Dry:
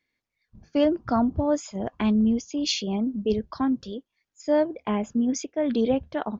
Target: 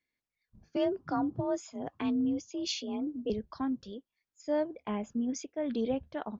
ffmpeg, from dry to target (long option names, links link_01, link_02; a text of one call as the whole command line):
ffmpeg -i in.wav -filter_complex "[0:a]asettb=1/sr,asplit=3[link_01][link_02][link_03];[link_01]atrim=end=0.764[link_04];[link_02]atrim=start=0.76:end=3.3,asetpts=PTS-STARTPTS,afade=type=in:duration=0.004:curve=qsin,afade=type=out:start_time=2.536:duration=0.004:curve=qsin,afreqshift=40[link_05];[link_03]atrim=start=3.296[link_06];[link_04][link_05]acrossfade=duration=0.004:curve1=hsin:curve2=qsin[link_07];[link_07][link_06]acrossfade=duration=0.004:curve1=qsin:curve2=hsin,volume=-8.5dB" out.wav